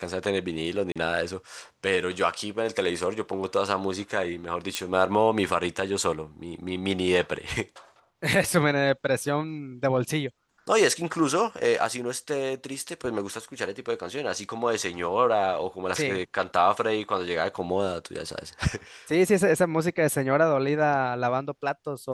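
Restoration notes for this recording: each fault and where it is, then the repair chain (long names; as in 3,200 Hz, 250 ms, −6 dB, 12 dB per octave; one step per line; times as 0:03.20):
0:00.92–0:00.96: drop-out 36 ms
0:04.75: click −11 dBFS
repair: click removal
repair the gap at 0:00.92, 36 ms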